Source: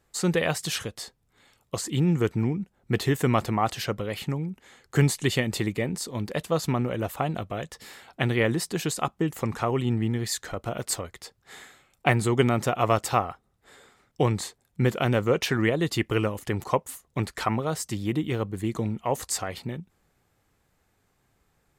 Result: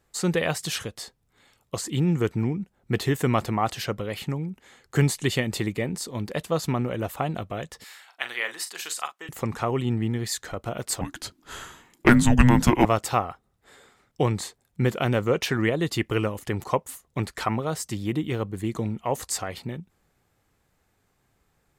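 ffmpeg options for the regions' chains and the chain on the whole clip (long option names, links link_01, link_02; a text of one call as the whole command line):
ffmpeg -i in.wav -filter_complex "[0:a]asettb=1/sr,asplit=3[link_01][link_02][link_03];[link_01]atrim=end=7.844[link_04];[link_02]atrim=start=7.84:end=9.29,asetpts=PTS-STARTPTS,afade=type=in:duration=0.004:curve=qsin,afade=type=out:start_time=1.446:duration=0.004:curve=qsin,highpass=1100,asplit=2[link_05][link_06];[link_06]adelay=41,volume=-10dB[link_07];[link_05][link_07]amix=inputs=2:normalize=0,atrim=end_sample=63945[link_08];[link_03]atrim=start=9.286[link_09];[link_04][link_08]acrossfade=duration=0.004:curve1=hsin:curve2=qsin[link_10];[link_10][link_09]acrossfade=duration=0.004:curve1=qsin:curve2=hsin,asettb=1/sr,asplit=3[link_11][link_12][link_13];[link_11]atrim=end=11.014[link_14];[link_12]atrim=start=11.01:end=12.85,asetpts=PTS-STARTPTS,afade=type=in:duration=0.004:curve=qsin,afade=type=out:start_time=1.836:duration=0.004:curve=qsin,afreqshift=-370,acontrast=72[link_15];[link_13]atrim=start=12.846[link_16];[link_14][link_15]acrossfade=duration=0.004:curve1=hsin:curve2=qsin[link_17];[link_17][link_16]acrossfade=duration=0.004:curve1=qsin:curve2=hsin" out.wav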